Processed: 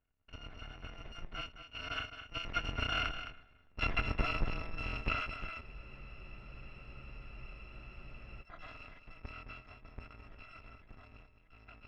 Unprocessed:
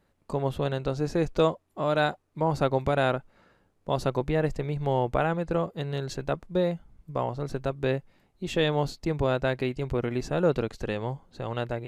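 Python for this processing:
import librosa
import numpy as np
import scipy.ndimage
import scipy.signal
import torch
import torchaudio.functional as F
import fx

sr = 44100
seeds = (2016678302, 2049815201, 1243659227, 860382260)

y = fx.bit_reversed(x, sr, seeds[0], block=256)
y = fx.doppler_pass(y, sr, speed_mps=10, closest_m=7.2, pass_at_s=3.73)
y = scipy.signal.sosfilt(scipy.signal.butter(4, 2400.0, 'lowpass', fs=sr, output='sos'), y)
y = fx.transient(y, sr, attack_db=4, sustain_db=8)
y = y + 10.0 ** (-10.0 / 20.0) * np.pad(y, (int(213 * sr / 1000.0), 0))[:len(y)]
y = fx.spec_freeze(y, sr, seeds[1], at_s=5.64, hold_s=2.77)
y = y * librosa.db_to_amplitude(4.0)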